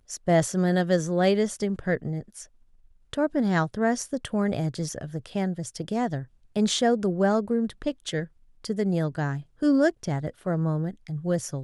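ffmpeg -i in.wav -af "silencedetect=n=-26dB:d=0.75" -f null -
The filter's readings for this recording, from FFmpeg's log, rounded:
silence_start: 2.19
silence_end: 3.13 | silence_duration: 0.94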